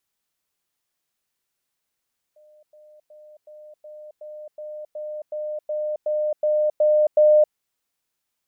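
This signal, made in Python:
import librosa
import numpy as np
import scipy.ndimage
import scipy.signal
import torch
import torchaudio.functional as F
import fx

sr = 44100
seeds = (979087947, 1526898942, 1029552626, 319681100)

y = fx.level_ladder(sr, hz=606.0, from_db=-50.0, step_db=3.0, steps=14, dwell_s=0.27, gap_s=0.1)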